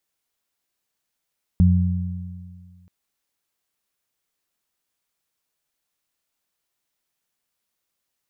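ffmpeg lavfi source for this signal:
ffmpeg -f lavfi -i "aevalsrc='0.251*pow(10,-3*t/1.95)*sin(2*PI*90*t)+0.2*pow(10,-3*t/1.85)*sin(2*PI*180*t)':duration=1.28:sample_rate=44100" out.wav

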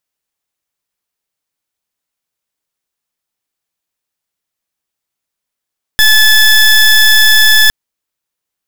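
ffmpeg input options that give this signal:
ffmpeg -f lavfi -i "aevalsrc='0.501*(2*lt(mod(1730*t,1),0.21)-1)':duration=1.71:sample_rate=44100" out.wav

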